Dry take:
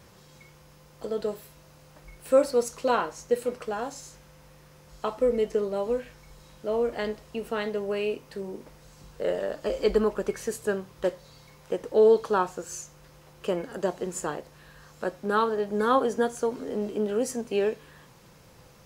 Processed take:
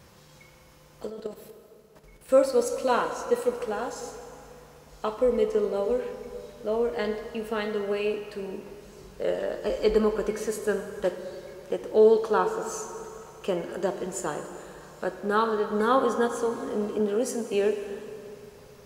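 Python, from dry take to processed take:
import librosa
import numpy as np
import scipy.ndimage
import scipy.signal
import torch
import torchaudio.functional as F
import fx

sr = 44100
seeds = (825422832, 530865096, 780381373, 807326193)

y = fx.level_steps(x, sr, step_db=13, at=(1.07, 2.29))
y = fx.highpass(y, sr, hz=130.0, slope=12, at=(16.99, 17.54))
y = fx.rev_plate(y, sr, seeds[0], rt60_s=3.1, hf_ratio=0.75, predelay_ms=0, drr_db=7.0)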